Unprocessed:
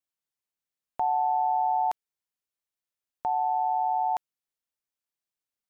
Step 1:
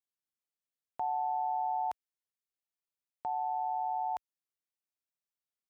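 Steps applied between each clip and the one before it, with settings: high-pass 49 Hz; trim -7.5 dB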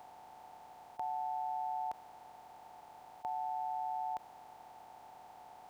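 spectral levelling over time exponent 0.2; trim -5.5 dB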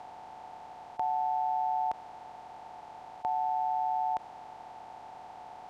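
distance through air 71 m; trim +8 dB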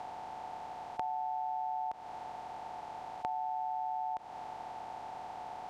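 compression 6:1, threshold -37 dBFS, peak gain reduction 10 dB; trim +3 dB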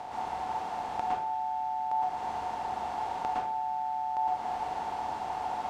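plate-style reverb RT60 0.59 s, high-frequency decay 0.9×, pre-delay 100 ms, DRR -5.5 dB; trim +3 dB

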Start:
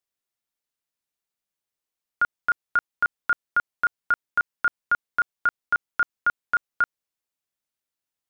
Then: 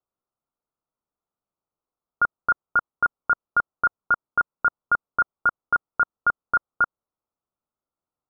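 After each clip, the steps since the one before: steep low-pass 1.4 kHz 96 dB/octave; trim +5.5 dB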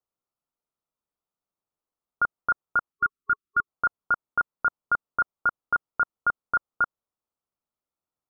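spectral selection erased 2.92–3.67 s, 420–1100 Hz; trim -3 dB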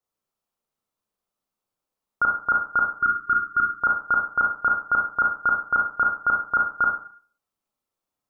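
Schroeder reverb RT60 0.47 s, combs from 29 ms, DRR -2 dB; trim +1.5 dB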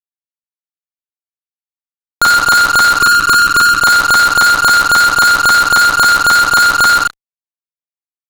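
fuzz box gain 44 dB, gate -44 dBFS; trim +6 dB

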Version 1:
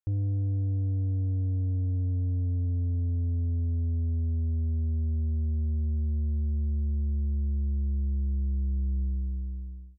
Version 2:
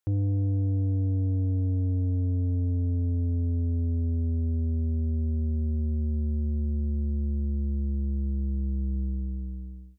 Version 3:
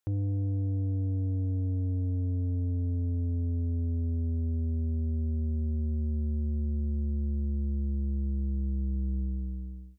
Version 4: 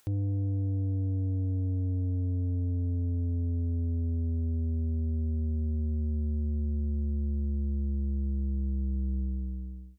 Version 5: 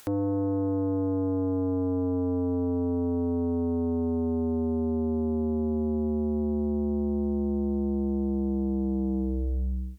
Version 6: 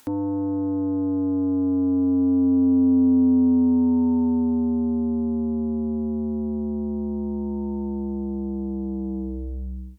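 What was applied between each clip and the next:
high-pass 170 Hz 6 dB/octave; trim +8 dB
peak limiter -23.5 dBFS, peak gain reduction 4 dB
upward compressor, threshold -48 dBFS
sine folder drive 9 dB, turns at -23 dBFS
small resonant body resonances 260/910 Hz, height 15 dB, ringing for 95 ms; trim -3 dB

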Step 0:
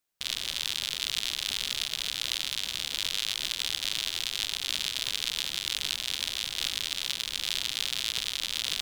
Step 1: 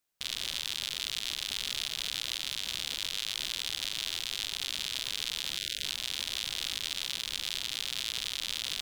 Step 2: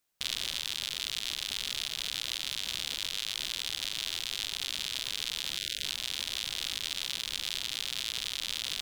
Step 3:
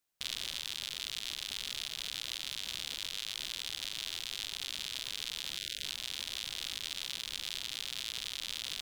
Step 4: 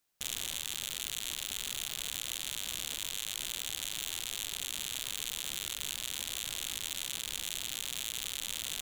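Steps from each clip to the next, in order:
spectral selection erased 5.58–5.84 s, 680–1400 Hz; peak limiter -15 dBFS, peak gain reduction 6 dB
gain riding 0.5 s
short-mantissa float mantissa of 6-bit; trim -4.5 dB
self-modulated delay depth 0.11 ms; trim +4.5 dB

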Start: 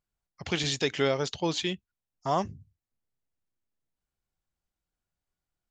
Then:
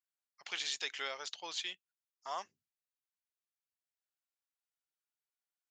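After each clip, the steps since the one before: high-pass 1.1 kHz 12 dB/octave; trim -6.5 dB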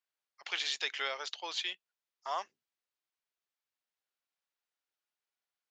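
three-band isolator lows -15 dB, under 290 Hz, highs -12 dB, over 5.6 kHz; trim +4.5 dB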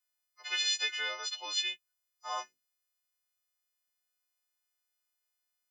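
partials quantised in pitch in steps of 3 st; trim -3.5 dB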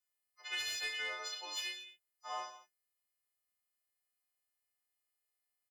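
saturation -25 dBFS, distortion -18 dB; reverse bouncing-ball echo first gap 30 ms, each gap 1.2×, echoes 5; trim -4.5 dB

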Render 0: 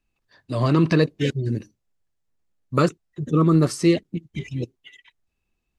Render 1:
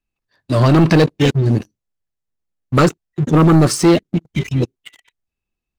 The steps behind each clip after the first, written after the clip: waveshaping leveller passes 3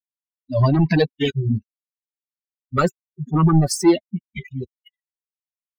expander on every frequency bin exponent 3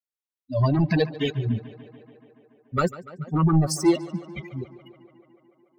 tape echo 144 ms, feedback 82%, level -16 dB, low-pass 4 kHz; trim -4.5 dB

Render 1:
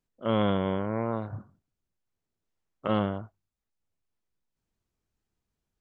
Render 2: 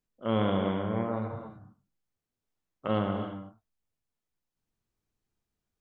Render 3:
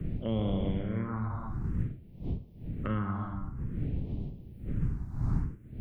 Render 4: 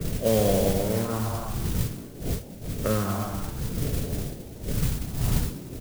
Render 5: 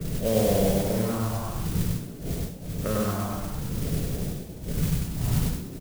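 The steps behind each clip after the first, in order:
gated-style reverb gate 340 ms flat, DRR 4 dB; trim -3 dB
wind noise 140 Hz -34 dBFS; phase shifter stages 4, 0.53 Hz, lowest notch 480–1500 Hz; three bands compressed up and down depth 70%; trim -1 dB
high-order bell 550 Hz +10 dB 1 oct; frequency-shifting echo 190 ms, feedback 52%, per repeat +120 Hz, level -16 dB; modulation noise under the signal 12 dB; trim +4.5 dB
peaking EQ 170 Hz +5.5 dB 0.33 oct; on a send: loudspeakers at several distances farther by 34 m -1 dB, 58 m -11 dB; on the sum: trim -3.5 dB

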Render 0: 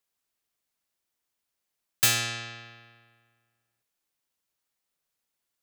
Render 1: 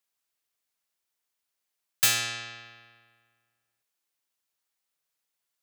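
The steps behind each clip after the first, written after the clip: bass shelf 460 Hz -7.5 dB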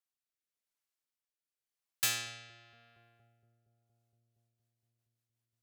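filtered feedback delay 233 ms, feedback 82%, low-pass 990 Hz, level -13.5 dB; rotary cabinet horn 0.9 Hz, later 5.5 Hz, at 3.83 s; trim -7.5 dB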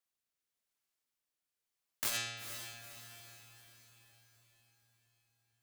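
integer overflow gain 28 dB; echo that smears into a reverb 467 ms, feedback 49%, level -11.5 dB; transformer saturation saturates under 530 Hz; trim +2.5 dB

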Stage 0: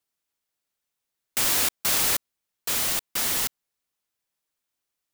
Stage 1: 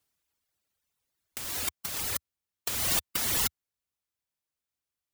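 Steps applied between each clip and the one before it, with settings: reverb removal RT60 1.9 s; peaking EQ 78 Hz +10 dB 1.5 oct; compressor with a negative ratio -29 dBFS, ratio -0.5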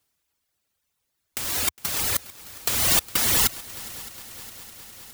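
in parallel at -9.5 dB: bit crusher 7-bit; on the sum: multi-head delay 205 ms, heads second and third, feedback 72%, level -20 dB; trim +5 dB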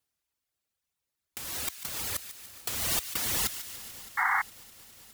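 feedback echo behind a high-pass 146 ms, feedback 62%, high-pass 1.7 kHz, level -11.5 dB; vibrato 3.1 Hz 31 cents; painted sound noise, 4.17–4.42 s, 740–2200 Hz -17 dBFS; trim -9 dB

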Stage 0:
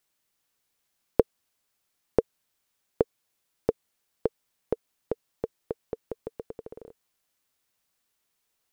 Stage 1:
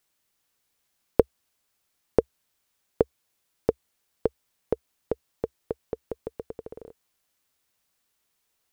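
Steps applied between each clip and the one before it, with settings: peaking EQ 67 Hz +4 dB 0.5 oct; trim +2 dB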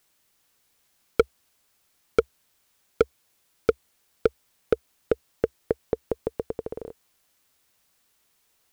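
overload inside the chain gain 16.5 dB; trim +7 dB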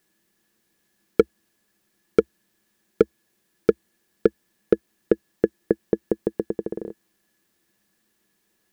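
small resonant body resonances 210/330/1700 Hz, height 17 dB, ringing for 60 ms; trim -3.5 dB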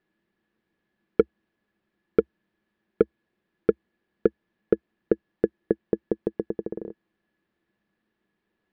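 distance through air 380 m; trim -2 dB

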